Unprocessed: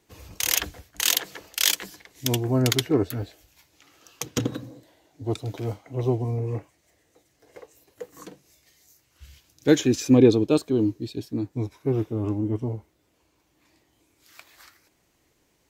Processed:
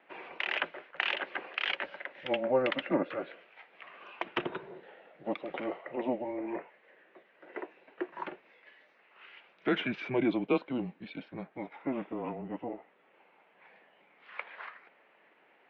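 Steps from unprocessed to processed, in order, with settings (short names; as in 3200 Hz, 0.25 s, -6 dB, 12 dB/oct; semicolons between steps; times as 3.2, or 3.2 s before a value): dynamic EQ 1400 Hz, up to -3 dB, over -40 dBFS, Q 1.2; in parallel at +2 dB: compressor, threshold -34 dBFS, peak gain reduction 21.5 dB; on the sum: limiter -9.5 dBFS, peak gain reduction 9 dB; mistuned SSB -130 Hz 570–2800 Hz; 1.71–3.21 small resonant body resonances 560 Hz, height 9 dB; gain +2.5 dB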